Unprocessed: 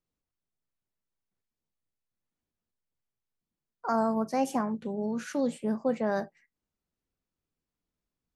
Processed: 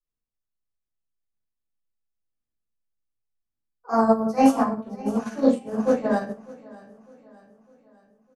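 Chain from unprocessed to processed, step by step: on a send: feedback echo 0.604 s, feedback 50%, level -9 dB; on the sum: shoebox room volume 60 m³, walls mixed, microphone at 3.5 m; upward expander 2.5:1, over -21 dBFS; gain -3 dB

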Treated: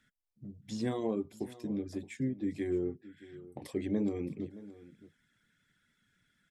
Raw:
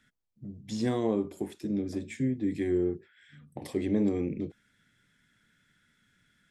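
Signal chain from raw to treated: reverb removal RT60 0.51 s; echo 0.62 s -17.5 dB; gain -4 dB

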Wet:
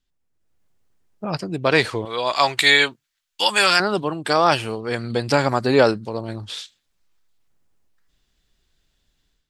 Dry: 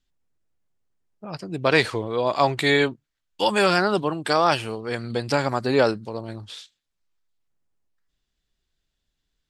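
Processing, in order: 2.05–3.8 tilt shelf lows -9.5 dB, about 810 Hz; AGC gain up to 11 dB; gain -1 dB

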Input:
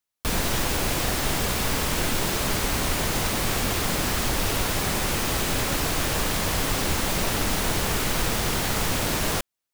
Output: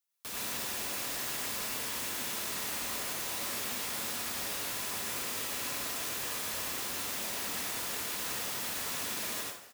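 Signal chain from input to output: HPF 160 Hz 6 dB/oct; tilt +2 dB/oct; limiter -23 dBFS, peak gain reduction 12.5 dB; on a send: frequency-shifting echo 0.151 s, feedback 50%, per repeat +44 Hz, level -16 dB; on the sum: plate-style reverb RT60 0.54 s, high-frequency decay 0.7×, pre-delay 75 ms, DRR -3 dB; gain -8 dB

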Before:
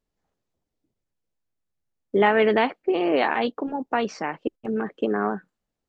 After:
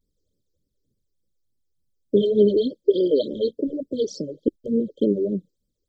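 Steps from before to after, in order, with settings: vibrato 1.1 Hz 92 cents; brick-wall FIR band-stop 610–3100 Hz; phaser stages 12, 3.4 Hz, lowest notch 180–1300 Hz; gain +6.5 dB

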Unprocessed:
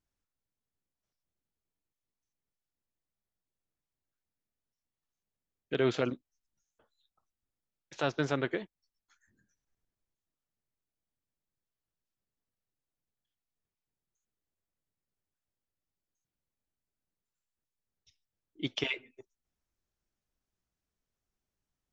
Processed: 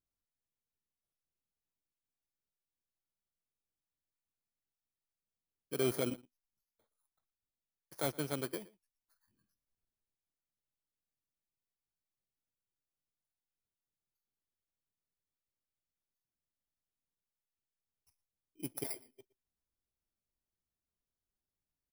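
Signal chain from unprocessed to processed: FFT order left unsorted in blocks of 16 samples; outdoor echo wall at 20 m, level -21 dB; 5.77–8.11 sample leveller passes 1; gain -7 dB

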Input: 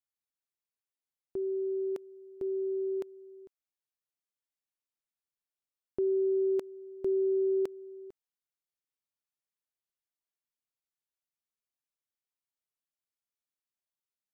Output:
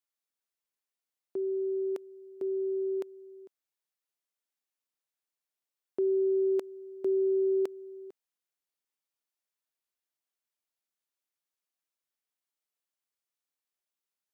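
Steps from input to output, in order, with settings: HPF 260 Hz; gain +2 dB

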